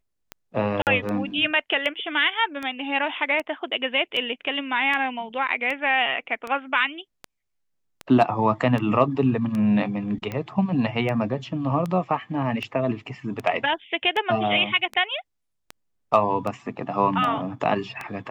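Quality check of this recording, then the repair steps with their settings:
tick 78 rpm -17 dBFS
0.82–0.87 s: dropout 48 ms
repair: de-click; interpolate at 0.82 s, 48 ms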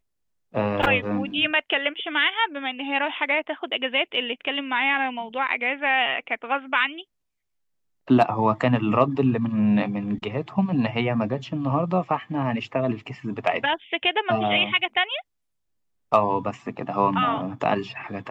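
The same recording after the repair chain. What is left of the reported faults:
nothing left

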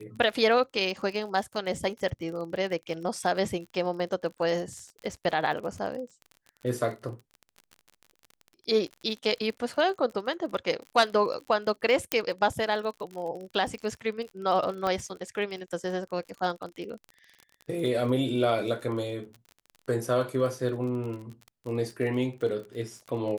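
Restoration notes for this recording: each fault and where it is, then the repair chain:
crackle 39 per s -36 dBFS
12.12 s: pop -7 dBFS
14.87 s: pop -17 dBFS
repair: de-click

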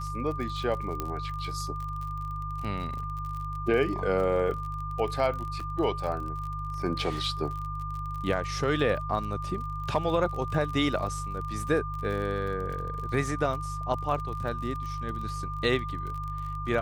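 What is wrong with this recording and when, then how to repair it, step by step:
crackle 40 per s -35 dBFS
hum 50 Hz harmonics 3 -36 dBFS
whine 1.2 kHz -35 dBFS
1.00 s: pop -16 dBFS
5.60 s: dropout 3.5 ms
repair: de-click; de-hum 50 Hz, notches 3; band-stop 1.2 kHz, Q 30; interpolate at 5.60 s, 3.5 ms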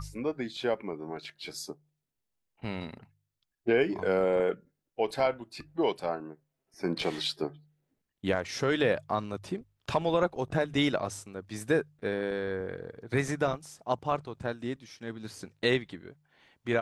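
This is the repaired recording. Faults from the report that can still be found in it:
nothing left

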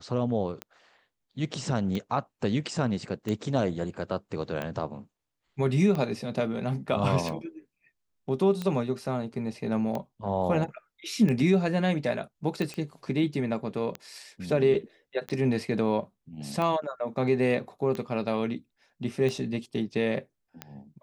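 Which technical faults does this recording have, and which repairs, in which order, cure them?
tick 45 rpm -19 dBFS
12.74 s: pop -23 dBFS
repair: de-click

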